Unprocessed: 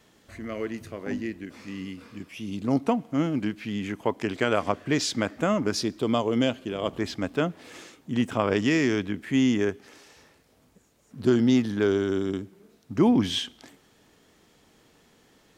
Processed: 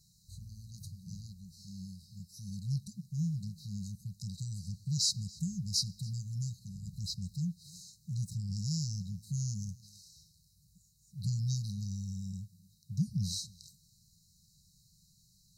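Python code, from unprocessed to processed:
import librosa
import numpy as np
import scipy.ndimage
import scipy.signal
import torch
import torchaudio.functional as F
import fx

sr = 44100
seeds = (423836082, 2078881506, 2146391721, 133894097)

y = fx.brickwall_bandstop(x, sr, low_hz=190.0, high_hz=3800.0)
y = y + 10.0 ** (-23.5 / 20.0) * np.pad(y, (int(282 * sr / 1000.0), 0))[:len(y)]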